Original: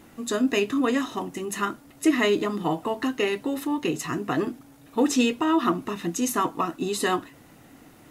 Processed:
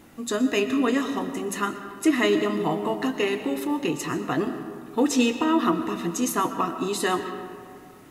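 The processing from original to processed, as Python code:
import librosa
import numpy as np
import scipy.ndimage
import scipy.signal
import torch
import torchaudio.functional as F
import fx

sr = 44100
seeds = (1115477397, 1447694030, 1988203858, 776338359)

y = fx.rev_freeverb(x, sr, rt60_s=2.1, hf_ratio=0.5, predelay_ms=80, drr_db=9.0)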